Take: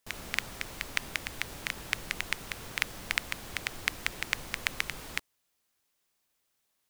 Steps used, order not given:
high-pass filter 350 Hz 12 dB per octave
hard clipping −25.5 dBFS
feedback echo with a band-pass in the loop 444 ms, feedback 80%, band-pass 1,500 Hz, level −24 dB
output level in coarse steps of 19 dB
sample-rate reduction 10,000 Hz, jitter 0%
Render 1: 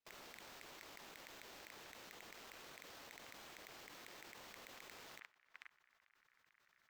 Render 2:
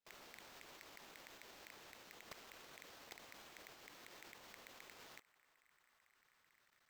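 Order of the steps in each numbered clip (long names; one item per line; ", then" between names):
high-pass filter, then sample-rate reduction, then feedback echo with a band-pass in the loop, then hard clipping, then output level in coarse steps
hard clipping, then feedback echo with a band-pass in the loop, then output level in coarse steps, then high-pass filter, then sample-rate reduction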